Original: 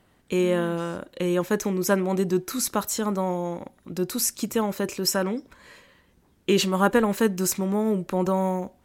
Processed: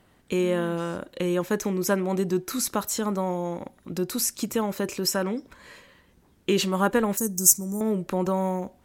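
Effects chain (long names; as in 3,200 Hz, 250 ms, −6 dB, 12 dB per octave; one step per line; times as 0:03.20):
0:07.17–0:07.81: drawn EQ curve 120 Hz 0 dB, 3,500 Hz −22 dB, 6,000 Hz +13 dB
in parallel at −1 dB: downward compressor, threshold −29 dBFS, peak gain reduction 19 dB
on the sum: level −4 dB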